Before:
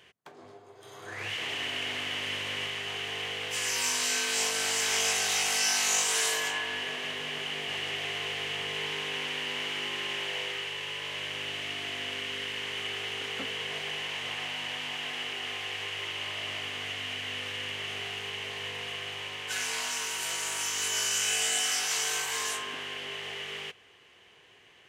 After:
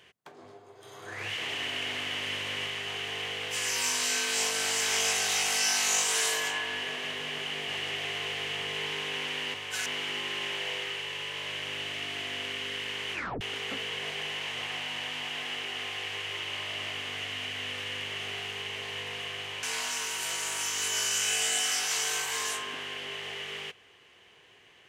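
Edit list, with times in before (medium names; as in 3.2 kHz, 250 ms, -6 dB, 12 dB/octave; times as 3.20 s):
12.81 s: tape stop 0.28 s
19.31–19.63 s: move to 9.54 s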